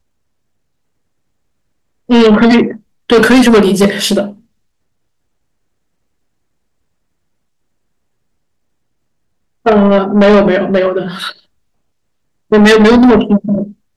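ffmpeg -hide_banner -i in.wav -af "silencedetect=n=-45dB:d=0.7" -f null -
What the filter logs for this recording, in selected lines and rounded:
silence_start: 0.00
silence_end: 2.09 | silence_duration: 2.09
silence_start: 4.42
silence_end: 9.65 | silence_duration: 5.23
silence_start: 11.44
silence_end: 12.50 | silence_duration: 1.06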